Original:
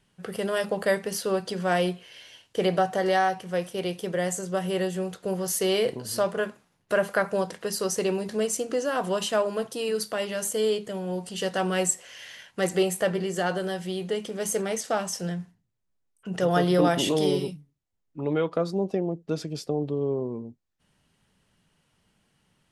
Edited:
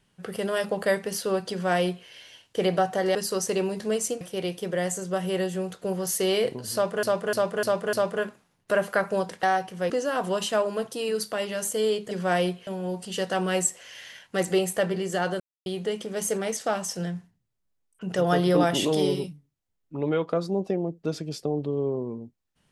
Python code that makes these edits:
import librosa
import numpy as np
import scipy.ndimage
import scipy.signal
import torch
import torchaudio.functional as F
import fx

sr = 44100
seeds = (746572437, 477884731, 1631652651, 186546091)

y = fx.edit(x, sr, fx.duplicate(start_s=1.51, length_s=0.56, to_s=10.91),
    fx.swap(start_s=3.15, length_s=0.47, other_s=7.64, other_length_s=1.06),
    fx.repeat(start_s=6.14, length_s=0.3, count=5),
    fx.silence(start_s=13.64, length_s=0.26), tone=tone)